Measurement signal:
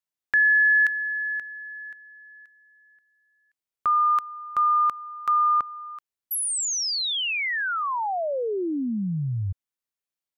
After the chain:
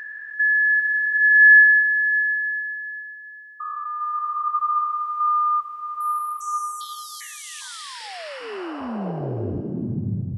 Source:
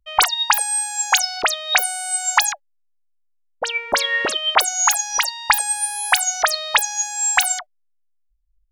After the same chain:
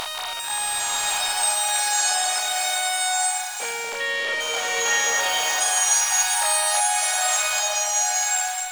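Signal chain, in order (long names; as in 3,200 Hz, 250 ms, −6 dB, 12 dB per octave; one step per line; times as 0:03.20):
spectrum averaged block by block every 400 ms
slow-attack reverb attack 1,000 ms, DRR −4 dB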